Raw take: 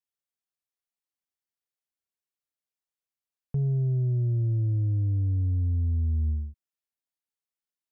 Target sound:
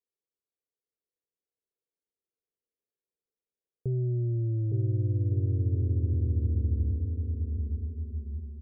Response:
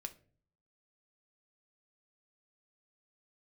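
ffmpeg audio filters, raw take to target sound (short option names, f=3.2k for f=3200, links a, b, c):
-filter_complex "[0:a]lowpass=f=490:t=q:w=4.9,asplit=2[a][b];[b]aecho=0:1:790|1343|1730|2001|2191:0.631|0.398|0.251|0.158|0.1[c];[a][c]amix=inputs=2:normalize=0,asetrate=40517,aresample=44100,volume=-4dB"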